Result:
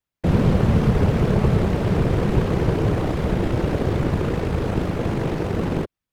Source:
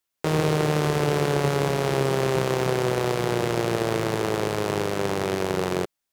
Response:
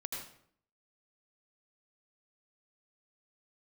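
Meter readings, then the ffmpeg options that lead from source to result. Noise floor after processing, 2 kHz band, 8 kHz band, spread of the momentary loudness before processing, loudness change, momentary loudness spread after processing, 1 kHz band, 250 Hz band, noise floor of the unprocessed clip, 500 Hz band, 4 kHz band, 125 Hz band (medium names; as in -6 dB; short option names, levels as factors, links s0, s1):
under -85 dBFS, -3.0 dB, no reading, 3 LU, +3.0 dB, 6 LU, -2.5 dB, +6.0 dB, -82 dBFS, -1.5 dB, -5.5 dB, +7.0 dB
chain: -af "afftfilt=real='hypot(re,im)*cos(2*PI*random(0))':imag='hypot(re,im)*sin(2*PI*random(1))':win_size=512:overlap=0.75,bass=f=250:g=13,treble=f=4000:g=-8,volume=1.5"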